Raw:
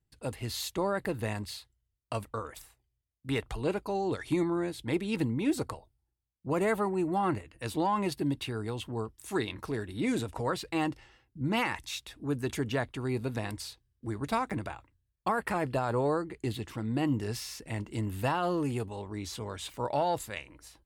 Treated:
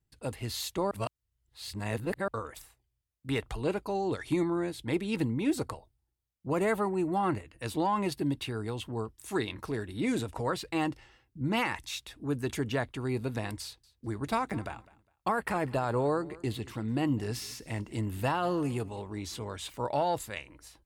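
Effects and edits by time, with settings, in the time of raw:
0:00.91–0:02.28: reverse
0:13.63–0:19.45: repeating echo 204 ms, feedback 24%, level −21.5 dB

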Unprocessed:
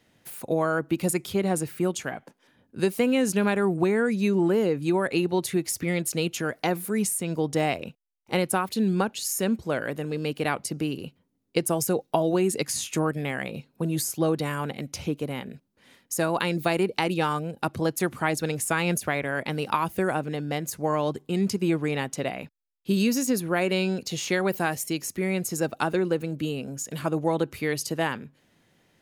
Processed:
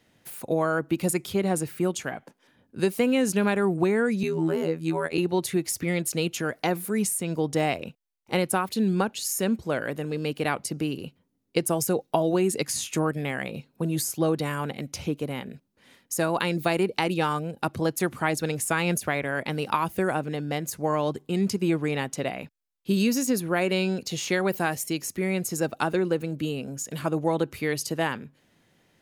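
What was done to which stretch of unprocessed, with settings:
0:04.23–0:05.18: phases set to zero 81.1 Hz

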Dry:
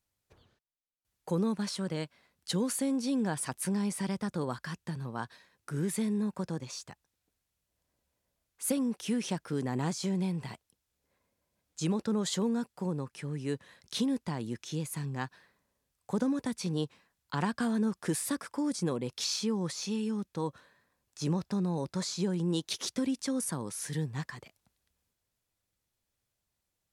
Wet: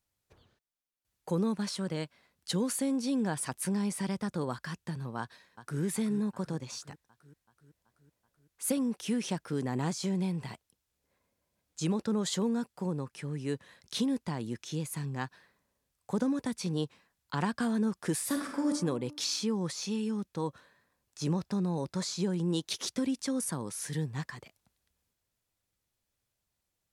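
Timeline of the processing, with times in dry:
0:05.19–0:05.81: delay throw 380 ms, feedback 65%, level −12.5 dB
0:18.25–0:18.70: thrown reverb, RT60 0.96 s, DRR 1 dB

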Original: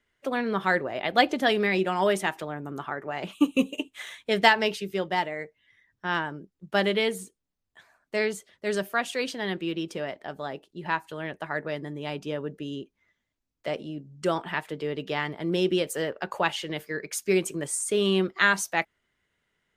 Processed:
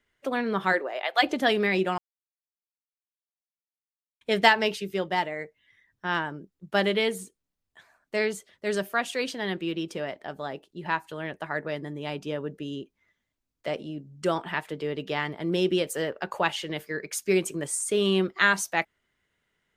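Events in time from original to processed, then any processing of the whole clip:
0:00.72–0:01.22: high-pass filter 260 Hz → 750 Hz 24 dB per octave
0:01.98–0:04.21: silence

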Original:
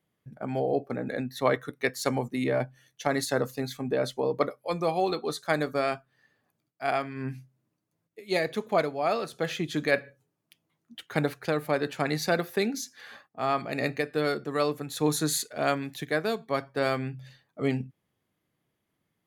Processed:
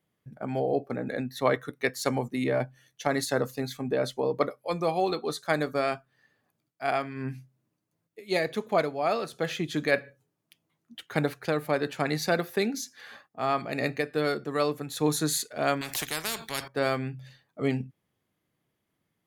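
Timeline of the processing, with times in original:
0:15.81–0:16.68: every bin compressed towards the loudest bin 4 to 1

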